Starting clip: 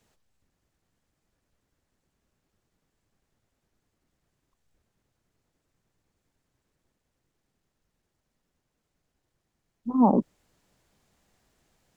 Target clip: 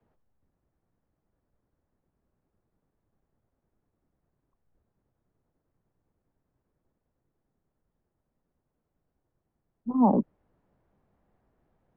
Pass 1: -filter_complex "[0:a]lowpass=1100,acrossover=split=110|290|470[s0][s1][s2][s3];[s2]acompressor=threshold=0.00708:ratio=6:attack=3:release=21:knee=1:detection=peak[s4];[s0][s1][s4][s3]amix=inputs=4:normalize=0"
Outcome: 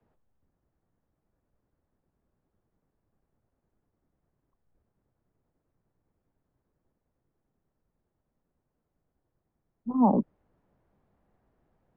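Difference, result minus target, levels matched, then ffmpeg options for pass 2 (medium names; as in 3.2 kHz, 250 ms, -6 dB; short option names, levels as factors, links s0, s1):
compression: peak gain reduction +6.5 dB
-filter_complex "[0:a]lowpass=1100,acrossover=split=110|290|470[s0][s1][s2][s3];[s2]acompressor=threshold=0.0168:ratio=6:attack=3:release=21:knee=1:detection=peak[s4];[s0][s1][s4][s3]amix=inputs=4:normalize=0"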